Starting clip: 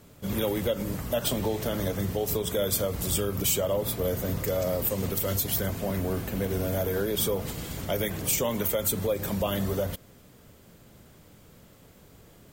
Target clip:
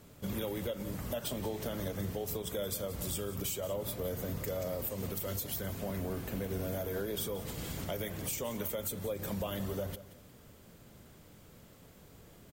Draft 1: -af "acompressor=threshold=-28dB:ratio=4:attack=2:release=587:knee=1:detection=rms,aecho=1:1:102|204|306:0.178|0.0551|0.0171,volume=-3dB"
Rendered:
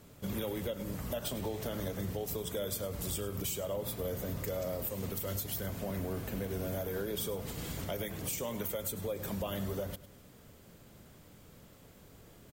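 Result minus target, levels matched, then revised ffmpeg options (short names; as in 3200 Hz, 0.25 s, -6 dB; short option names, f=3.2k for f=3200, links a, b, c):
echo 76 ms early
-af "acompressor=threshold=-28dB:ratio=4:attack=2:release=587:knee=1:detection=rms,aecho=1:1:178|356|534:0.178|0.0551|0.0171,volume=-3dB"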